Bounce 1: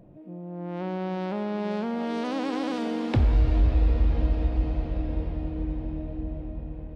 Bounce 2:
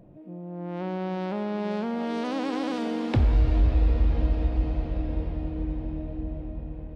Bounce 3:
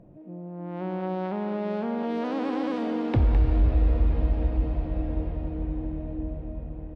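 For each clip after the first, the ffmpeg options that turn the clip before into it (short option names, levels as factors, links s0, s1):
-af anull
-filter_complex "[0:a]lowpass=f=2000:p=1,asplit=2[s0][s1];[s1]adelay=210,highpass=300,lowpass=3400,asoftclip=type=hard:threshold=0.075,volume=0.447[s2];[s0][s2]amix=inputs=2:normalize=0"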